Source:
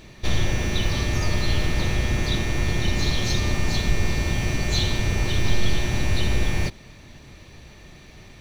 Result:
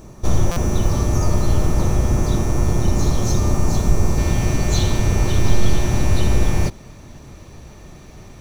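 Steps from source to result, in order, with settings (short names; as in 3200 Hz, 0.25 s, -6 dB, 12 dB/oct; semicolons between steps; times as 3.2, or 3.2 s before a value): band shelf 2800 Hz -15.5 dB, from 4.17 s -8.5 dB; stuck buffer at 0.51, samples 256, times 8; gain +6 dB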